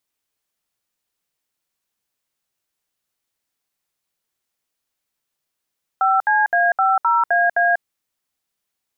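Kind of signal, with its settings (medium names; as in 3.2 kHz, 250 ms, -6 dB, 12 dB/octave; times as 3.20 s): DTMF "5CA50AA", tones 192 ms, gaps 67 ms, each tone -16 dBFS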